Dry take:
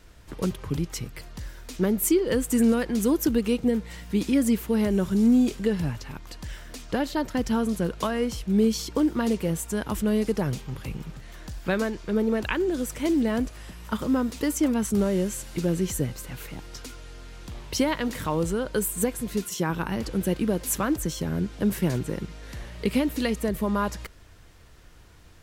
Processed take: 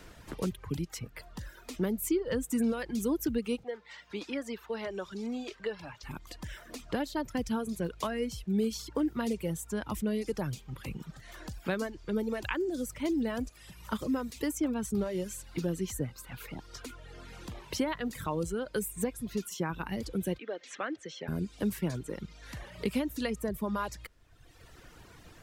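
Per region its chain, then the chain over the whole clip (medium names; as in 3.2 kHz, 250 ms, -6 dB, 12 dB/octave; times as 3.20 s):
3.63–6.03 s: three-band isolator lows -18 dB, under 410 Hz, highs -20 dB, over 5.5 kHz + hum notches 50/100/150 Hz
20.38–21.28 s: cabinet simulation 480–5000 Hz, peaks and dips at 990 Hz -9 dB, 1.9 kHz +4 dB, 4.8 kHz -7 dB + band-stop 3.7 kHz, Q 29
whole clip: reverb removal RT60 1.2 s; three bands compressed up and down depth 40%; trim -6 dB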